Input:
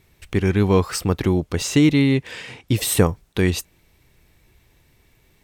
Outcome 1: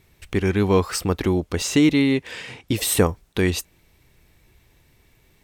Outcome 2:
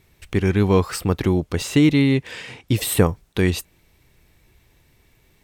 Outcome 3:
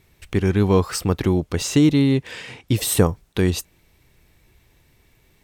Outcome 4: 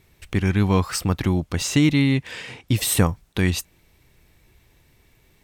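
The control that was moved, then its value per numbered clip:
dynamic bell, frequency: 130 Hz, 6 kHz, 2.2 kHz, 420 Hz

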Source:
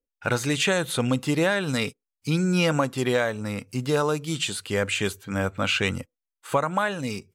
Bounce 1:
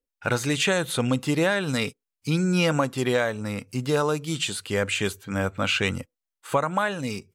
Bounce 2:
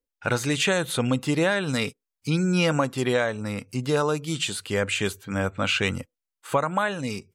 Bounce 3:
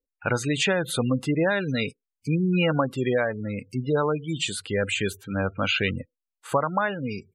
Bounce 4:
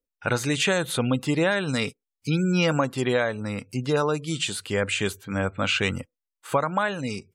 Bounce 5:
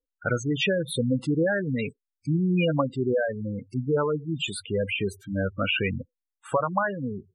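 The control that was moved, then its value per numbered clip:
spectral gate, under each frame's peak: -60 dB, -45 dB, -20 dB, -35 dB, -10 dB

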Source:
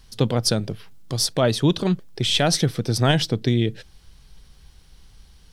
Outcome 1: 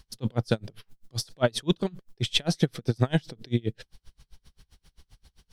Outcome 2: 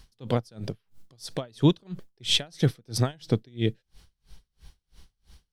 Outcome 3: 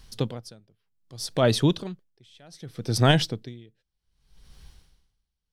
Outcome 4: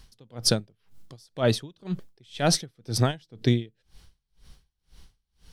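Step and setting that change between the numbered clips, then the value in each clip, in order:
logarithmic tremolo, rate: 7.6 Hz, 3 Hz, 0.65 Hz, 2 Hz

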